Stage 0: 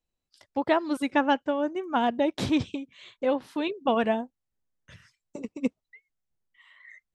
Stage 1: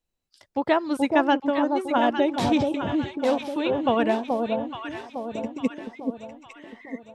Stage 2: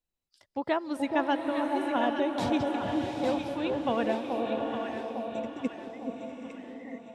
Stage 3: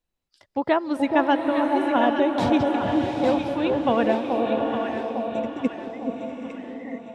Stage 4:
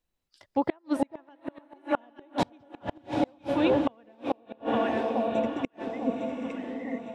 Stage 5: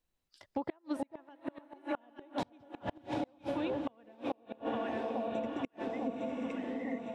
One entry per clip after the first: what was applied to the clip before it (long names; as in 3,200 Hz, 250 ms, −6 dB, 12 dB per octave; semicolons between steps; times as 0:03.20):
delay that swaps between a low-pass and a high-pass 428 ms, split 940 Hz, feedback 67%, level −3 dB; level +2 dB
slow-attack reverb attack 820 ms, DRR 4.5 dB; level −7 dB
high-shelf EQ 4,800 Hz −8.5 dB; level +7.5 dB
gate with flip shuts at −13 dBFS, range −35 dB
downward compressor 6 to 1, threshold −31 dBFS, peak gain reduction 11.5 dB; level −1.5 dB